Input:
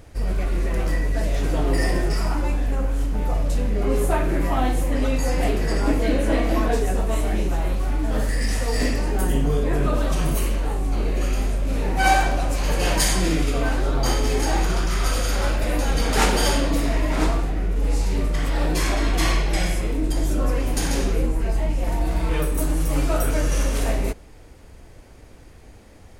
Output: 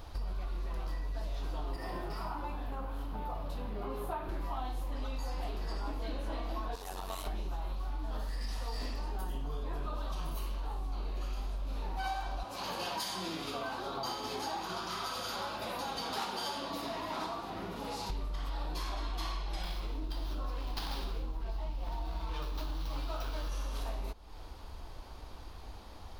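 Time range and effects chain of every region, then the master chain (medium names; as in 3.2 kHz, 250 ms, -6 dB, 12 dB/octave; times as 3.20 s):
1.76–4.29 s: high-pass 74 Hz + peaking EQ 6.2 kHz -9.5 dB 1.4 oct
6.75–7.27 s: tilt EQ +2.5 dB/octave + transformer saturation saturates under 330 Hz
12.43–18.10 s: high-pass 110 Hz 24 dB/octave + comb of notches 150 Hz
19.63–23.49 s: dynamic bell 4.9 kHz, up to +8 dB, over -47 dBFS, Q 0.83 + sliding maximum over 5 samples
whole clip: graphic EQ 125/250/500/1000/2000/4000/8000 Hz -9/-5/-7/+8/-10/+8/-12 dB; compression 5:1, threshold -37 dBFS; trim +1 dB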